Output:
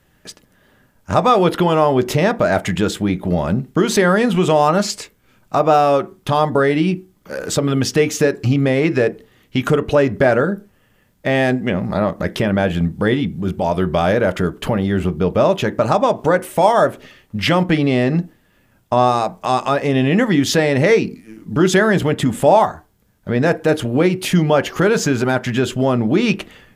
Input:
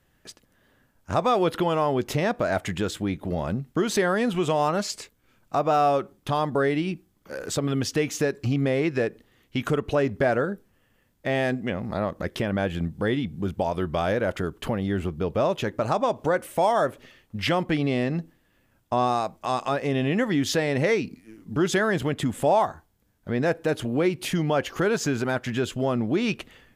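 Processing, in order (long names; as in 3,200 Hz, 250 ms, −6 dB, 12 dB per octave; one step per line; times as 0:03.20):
0:13.13–0:13.67: transient designer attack −6 dB, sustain 0 dB
on a send: convolution reverb RT60 0.30 s, pre-delay 3 ms, DRR 10.5 dB
on the sum: level +8 dB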